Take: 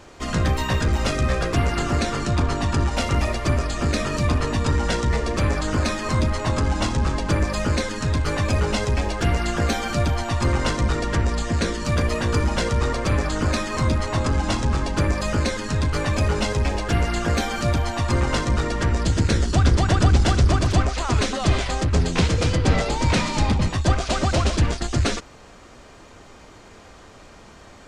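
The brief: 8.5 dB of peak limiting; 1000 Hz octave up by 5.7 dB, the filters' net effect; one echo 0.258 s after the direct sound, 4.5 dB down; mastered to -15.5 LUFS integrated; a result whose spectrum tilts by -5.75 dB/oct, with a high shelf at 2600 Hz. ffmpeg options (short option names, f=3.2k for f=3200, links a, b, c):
-af "equalizer=f=1k:t=o:g=8.5,highshelf=f=2.6k:g=-7.5,alimiter=limit=-13.5dB:level=0:latency=1,aecho=1:1:258:0.596,volume=6.5dB"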